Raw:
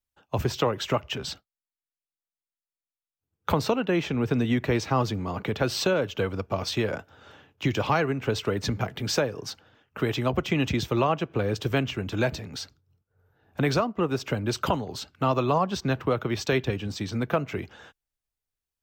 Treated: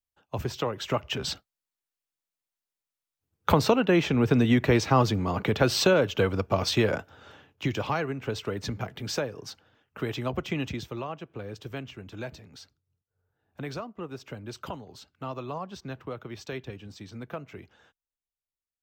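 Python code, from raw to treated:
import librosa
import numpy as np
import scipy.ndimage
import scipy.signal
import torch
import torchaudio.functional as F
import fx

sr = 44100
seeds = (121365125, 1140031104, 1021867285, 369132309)

y = fx.gain(x, sr, db=fx.line((0.73, -5.0), (1.31, 3.0), (6.91, 3.0), (7.95, -5.0), (10.54, -5.0), (11.03, -12.0)))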